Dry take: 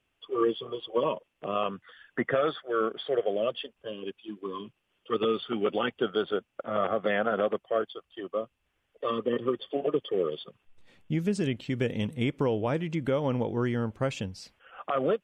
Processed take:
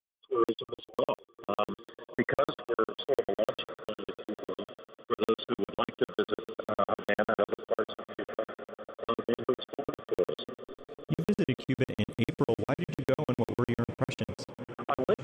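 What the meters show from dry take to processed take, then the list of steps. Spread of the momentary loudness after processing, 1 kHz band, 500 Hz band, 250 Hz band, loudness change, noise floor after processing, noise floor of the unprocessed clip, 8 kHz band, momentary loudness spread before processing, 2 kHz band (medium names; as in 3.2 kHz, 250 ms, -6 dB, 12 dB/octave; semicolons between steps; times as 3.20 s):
11 LU, -2.5 dB, -3.0 dB, -2.5 dB, -3.0 dB, under -85 dBFS, -77 dBFS, no reading, 11 LU, -2.0 dB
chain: echo that smears into a reverb 1186 ms, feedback 55%, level -13 dB; expander -37 dBFS; crackling interface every 0.10 s, samples 2048, zero, from 0.44 s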